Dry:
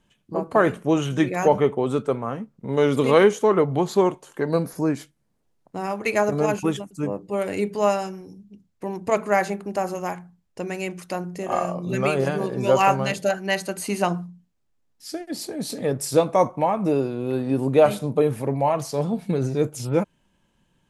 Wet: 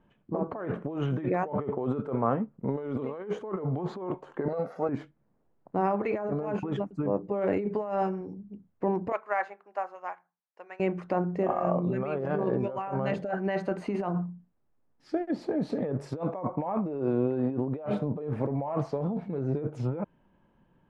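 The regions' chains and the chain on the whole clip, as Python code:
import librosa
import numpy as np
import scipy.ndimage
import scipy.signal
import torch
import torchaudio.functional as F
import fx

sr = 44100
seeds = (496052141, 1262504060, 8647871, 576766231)

y = fx.chain(x, sr, fx.halfwave_gain(db=-3.0),
    fx.highpass(hz=340.0, slope=12),
    fx.comb(ms=1.5, depth=0.75), at=(4.48, 4.89))
y = fx.chain(y, sr, fx.highpass(hz=980.0, slope=12),
    fx.upward_expand(threshold_db=-44.0, expansion=1.5), at=(9.12, 10.8))
y = scipy.signal.sosfilt(scipy.signal.butter(2, 1300.0, 'lowpass', fs=sr, output='sos'), y)
y = fx.over_compress(y, sr, threshold_db=-28.0, ratio=-1.0)
y = fx.low_shelf(y, sr, hz=150.0, db=-5.0)
y = F.gain(torch.from_numpy(y), -1.0).numpy()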